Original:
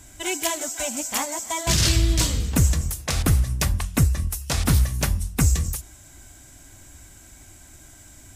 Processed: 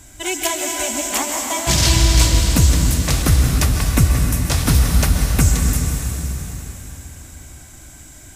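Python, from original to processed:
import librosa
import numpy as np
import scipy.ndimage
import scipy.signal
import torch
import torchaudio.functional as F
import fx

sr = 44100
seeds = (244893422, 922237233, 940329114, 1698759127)

y = fx.rev_plate(x, sr, seeds[0], rt60_s=4.1, hf_ratio=0.95, predelay_ms=115, drr_db=1.0)
y = y * librosa.db_to_amplitude(3.5)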